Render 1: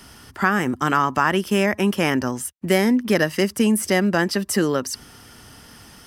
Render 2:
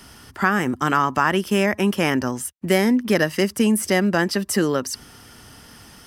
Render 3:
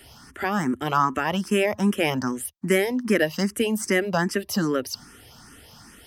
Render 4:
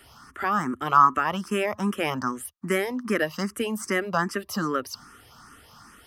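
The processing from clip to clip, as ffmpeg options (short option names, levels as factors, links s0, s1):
-af anull
-filter_complex "[0:a]asplit=2[s0][s1];[s1]afreqshift=2.5[s2];[s0][s2]amix=inputs=2:normalize=1"
-af "equalizer=f=1200:t=o:w=0.58:g=12.5,volume=0.562"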